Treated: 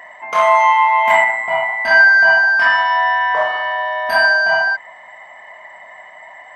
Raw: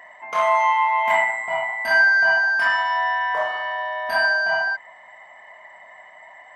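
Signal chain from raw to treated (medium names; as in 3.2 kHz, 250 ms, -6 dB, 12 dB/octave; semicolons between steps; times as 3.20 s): 1.24–3.87 s: low-pass 5.7 kHz 12 dB/octave; trim +6.5 dB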